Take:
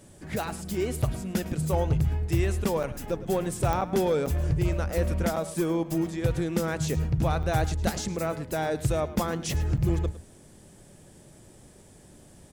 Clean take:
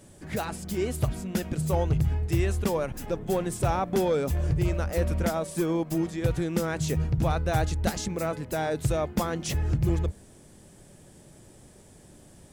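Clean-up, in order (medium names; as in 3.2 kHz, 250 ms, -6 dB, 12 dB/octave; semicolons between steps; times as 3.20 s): de-click; interpolate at 1.02/2.83/3.81/4.26/5.36/7.43/9.77 s, 5.8 ms; inverse comb 107 ms -16 dB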